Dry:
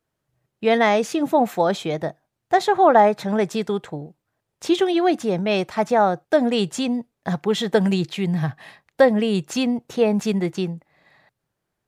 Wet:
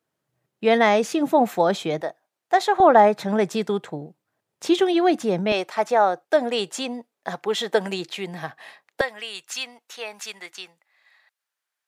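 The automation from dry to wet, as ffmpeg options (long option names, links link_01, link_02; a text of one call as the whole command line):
ffmpeg -i in.wav -af "asetnsamples=nb_out_samples=441:pad=0,asendcmd='2.01 highpass f 450;2.8 highpass f 150;5.52 highpass f 410;9.01 highpass f 1400',highpass=150" out.wav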